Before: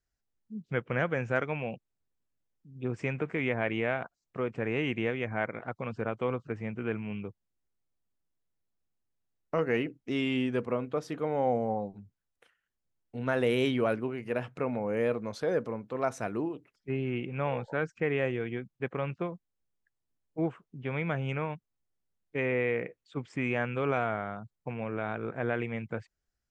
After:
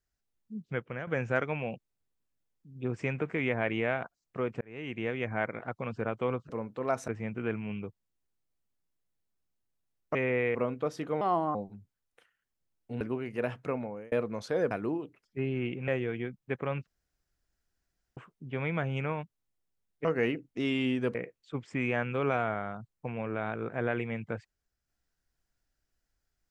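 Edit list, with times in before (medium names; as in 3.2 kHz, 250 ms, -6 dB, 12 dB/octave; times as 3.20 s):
0.59–1.07 s: fade out, to -13 dB
4.61–5.23 s: fade in linear
9.56–10.66 s: swap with 22.37–22.77 s
11.32–11.79 s: speed 139%
13.25–13.93 s: delete
14.59–15.04 s: fade out
15.63–16.22 s: move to 6.49 s
17.39–18.20 s: delete
19.19–20.49 s: room tone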